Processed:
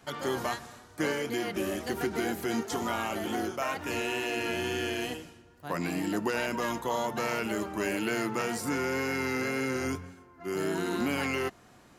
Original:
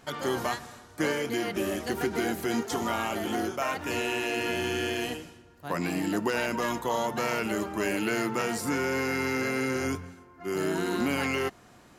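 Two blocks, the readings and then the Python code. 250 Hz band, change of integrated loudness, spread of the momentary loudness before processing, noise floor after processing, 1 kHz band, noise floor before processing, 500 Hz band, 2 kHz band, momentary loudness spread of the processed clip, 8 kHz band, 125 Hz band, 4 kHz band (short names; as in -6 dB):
-2.0 dB, -2.0 dB, 6 LU, -57 dBFS, -2.0 dB, -55 dBFS, -2.0 dB, -2.0 dB, 6 LU, -2.0 dB, -2.0 dB, -2.0 dB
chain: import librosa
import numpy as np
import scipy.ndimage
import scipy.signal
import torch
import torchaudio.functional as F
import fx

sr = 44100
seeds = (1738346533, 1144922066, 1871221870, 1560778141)

y = fx.wow_flutter(x, sr, seeds[0], rate_hz=2.1, depth_cents=26.0)
y = F.gain(torch.from_numpy(y), -2.0).numpy()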